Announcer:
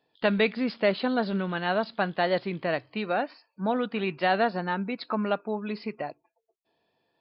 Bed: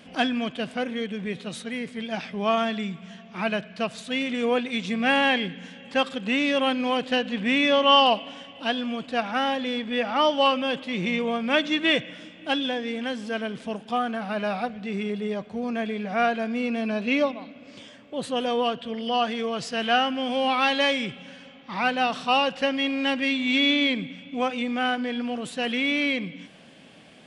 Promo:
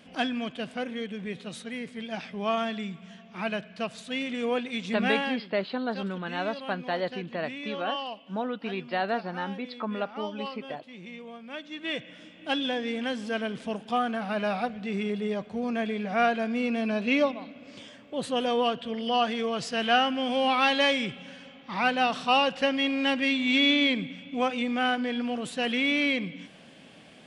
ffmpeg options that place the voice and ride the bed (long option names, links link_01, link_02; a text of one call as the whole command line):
ffmpeg -i stem1.wav -i stem2.wav -filter_complex "[0:a]adelay=4700,volume=-4.5dB[link_01];[1:a]volume=11.5dB,afade=type=out:start_time=5.04:duration=0.37:silence=0.237137,afade=type=in:start_time=11.68:duration=1.13:silence=0.158489[link_02];[link_01][link_02]amix=inputs=2:normalize=0" out.wav